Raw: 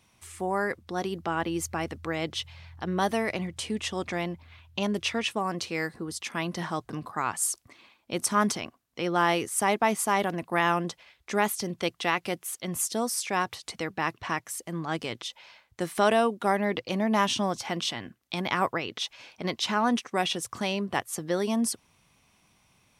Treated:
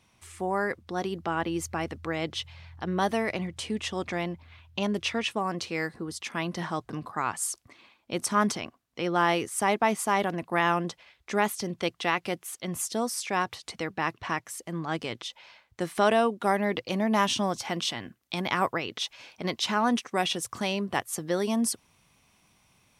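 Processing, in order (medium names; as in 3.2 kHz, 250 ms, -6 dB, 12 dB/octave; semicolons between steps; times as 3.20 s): treble shelf 8.2 kHz -6 dB, from 16.43 s +2 dB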